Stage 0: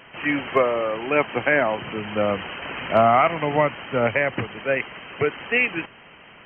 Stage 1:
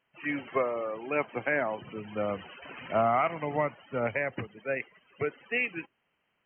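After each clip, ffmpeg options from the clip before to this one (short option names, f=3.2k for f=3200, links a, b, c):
-af "afftdn=nr=21:nf=-30,volume=-9dB"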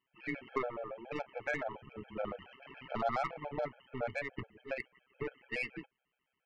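-af "tremolo=f=130:d=0.75,aeval=exprs='0.178*(cos(1*acos(clip(val(0)/0.178,-1,1)))-cos(1*PI/2))+0.0112*(cos(6*acos(clip(val(0)/0.178,-1,1)))-cos(6*PI/2))':c=same,afftfilt=real='re*gt(sin(2*PI*7.1*pts/sr)*(1-2*mod(floor(b*sr/1024/440),2)),0)':imag='im*gt(sin(2*PI*7.1*pts/sr)*(1-2*mod(floor(b*sr/1024/440),2)),0)':win_size=1024:overlap=0.75,volume=-2dB"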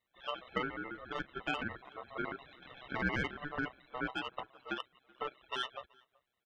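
-filter_complex "[0:a]aeval=exprs='val(0)*sin(2*PI*880*n/s)':c=same,asplit=2[a][b];[b]adelay=379,volume=-26dB,highshelf=f=4k:g=-8.53[c];[a][c]amix=inputs=2:normalize=0,volume=2.5dB"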